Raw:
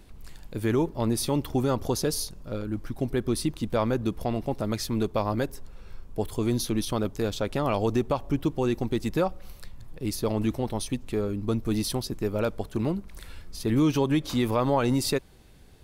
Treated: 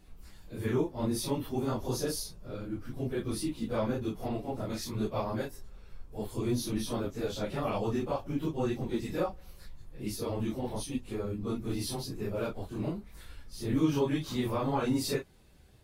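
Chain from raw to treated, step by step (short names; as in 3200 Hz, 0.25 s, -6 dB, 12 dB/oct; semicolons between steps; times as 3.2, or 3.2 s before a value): phase scrambler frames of 0.1 s; gain -6 dB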